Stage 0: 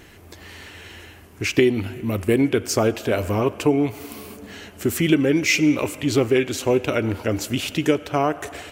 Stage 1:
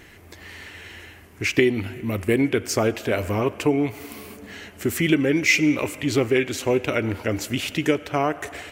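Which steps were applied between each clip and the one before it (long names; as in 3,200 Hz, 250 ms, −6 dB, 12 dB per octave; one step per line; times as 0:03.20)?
parametric band 2,000 Hz +5.5 dB 0.56 octaves
level −2 dB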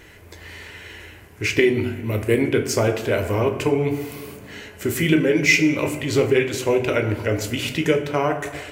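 convolution reverb RT60 0.95 s, pre-delay 12 ms, DRR 5 dB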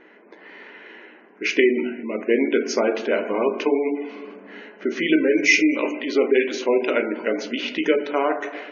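gate on every frequency bin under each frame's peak −30 dB strong
linear-phase brick-wall band-pass 190–6,800 Hz
low-pass that shuts in the quiet parts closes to 1,600 Hz, open at −15 dBFS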